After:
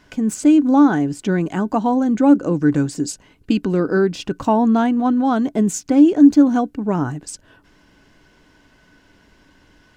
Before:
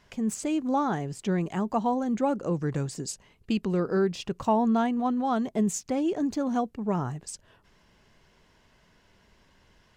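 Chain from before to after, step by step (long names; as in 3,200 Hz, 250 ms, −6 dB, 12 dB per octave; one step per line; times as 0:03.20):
hollow resonant body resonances 290/1,500 Hz, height 14 dB, ringing for 95 ms
level +6.5 dB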